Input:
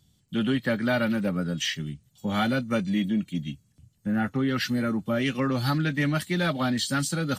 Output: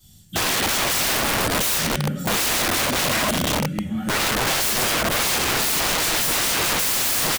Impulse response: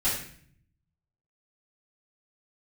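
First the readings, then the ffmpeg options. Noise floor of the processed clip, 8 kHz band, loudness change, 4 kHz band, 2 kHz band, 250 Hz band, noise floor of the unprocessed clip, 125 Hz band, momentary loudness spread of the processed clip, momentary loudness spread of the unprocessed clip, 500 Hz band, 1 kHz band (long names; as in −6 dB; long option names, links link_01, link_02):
−32 dBFS, +18.0 dB, +7.0 dB, +12.0 dB, +8.5 dB, −3.0 dB, −66 dBFS, −1.0 dB, 4 LU, 8 LU, +3.5 dB, +9.0 dB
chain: -filter_complex "[0:a]crystalizer=i=2.5:c=0,asplit=2[link_01][link_02];[link_02]adelay=788,lowpass=frequency=2800:poles=1,volume=-15.5dB,asplit=2[link_03][link_04];[link_04]adelay=788,lowpass=frequency=2800:poles=1,volume=0.47,asplit=2[link_05][link_06];[link_06]adelay=788,lowpass=frequency=2800:poles=1,volume=0.47,asplit=2[link_07][link_08];[link_08]adelay=788,lowpass=frequency=2800:poles=1,volume=0.47[link_09];[link_01][link_03][link_05][link_07][link_09]amix=inputs=5:normalize=0[link_10];[1:a]atrim=start_sample=2205[link_11];[link_10][link_11]afir=irnorm=-1:irlink=0,aeval=exprs='(mod(5.96*val(0)+1,2)-1)/5.96':channel_layout=same,volume=-1dB"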